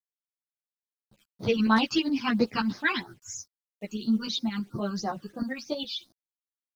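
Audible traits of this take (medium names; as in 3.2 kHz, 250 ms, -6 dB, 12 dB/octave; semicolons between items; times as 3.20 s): a quantiser's noise floor 10-bit, dither none; phasing stages 12, 3 Hz, lowest notch 620–2800 Hz; tremolo saw up 9.6 Hz, depth 55%; a shimmering, thickened sound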